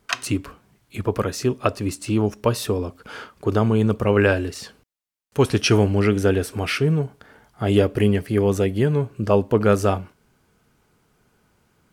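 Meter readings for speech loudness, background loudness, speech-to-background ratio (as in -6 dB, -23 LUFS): -21.5 LUFS, -29.0 LUFS, 7.5 dB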